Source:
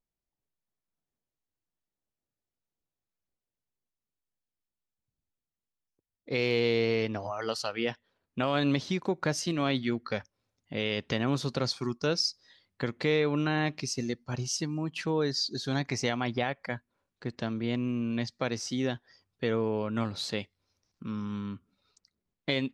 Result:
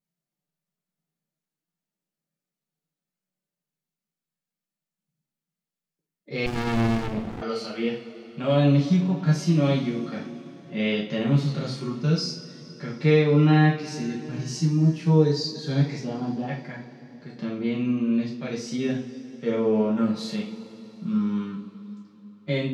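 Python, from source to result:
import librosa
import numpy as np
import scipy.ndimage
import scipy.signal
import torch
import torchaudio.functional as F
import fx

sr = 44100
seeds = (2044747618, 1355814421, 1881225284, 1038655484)

y = fx.low_shelf_res(x, sr, hz=120.0, db=-11.5, q=3.0)
y = fx.hpss(y, sr, part='percussive', gain_db=-14)
y = fx.moving_average(y, sr, points=21, at=(15.98, 16.47), fade=0.02)
y = fx.rev_double_slope(y, sr, seeds[0], early_s=0.38, late_s=4.0, knee_db=-21, drr_db=-5.5)
y = fx.running_max(y, sr, window=65, at=(6.46, 7.42))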